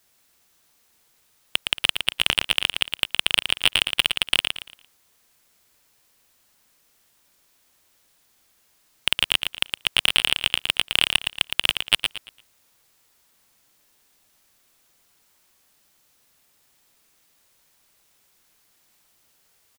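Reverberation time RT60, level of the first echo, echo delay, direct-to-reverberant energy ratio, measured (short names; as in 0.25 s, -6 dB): none, -6.0 dB, 0.114 s, none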